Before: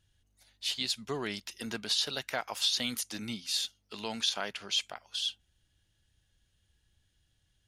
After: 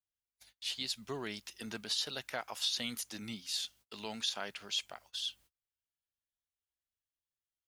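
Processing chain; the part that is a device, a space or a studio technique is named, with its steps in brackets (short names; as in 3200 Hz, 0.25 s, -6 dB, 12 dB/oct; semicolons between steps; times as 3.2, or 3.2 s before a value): noise-reduction cassette on a plain deck (mismatched tape noise reduction encoder only; wow and flutter; white noise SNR 31 dB); gate -54 dBFS, range -31 dB; gain -5 dB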